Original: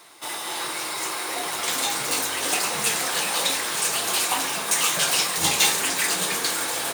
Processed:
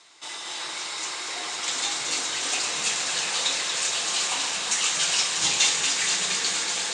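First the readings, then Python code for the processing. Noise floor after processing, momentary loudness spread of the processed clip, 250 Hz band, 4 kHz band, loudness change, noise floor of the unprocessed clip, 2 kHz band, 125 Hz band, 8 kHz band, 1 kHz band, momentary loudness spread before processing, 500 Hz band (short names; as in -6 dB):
-36 dBFS, 10 LU, -8.0 dB, +0.5 dB, -1.5 dB, -32 dBFS, -2.5 dB, -8.0 dB, -1.0 dB, -6.0 dB, 8 LU, -7.0 dB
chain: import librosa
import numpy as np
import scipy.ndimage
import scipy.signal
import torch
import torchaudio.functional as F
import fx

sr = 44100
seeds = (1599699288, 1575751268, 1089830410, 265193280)

p1 = scipy.signal.sosfilt(scipy.signal.ellip(4, 1.0, 70, 7600.0, 'lowpass', fs=sr, output='sos'), x)
p2 = fx.high_shelf(p1, sr, hz=2100.0, db=10.5)
p3 = p2 + fx.echo_alternate(p2, sr, ms=117, hz=2200.0, feedback_pct=90, wet_db=-6.5, dry=0)
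y = p3 * 10.0 ** (-9.0 / 20.0)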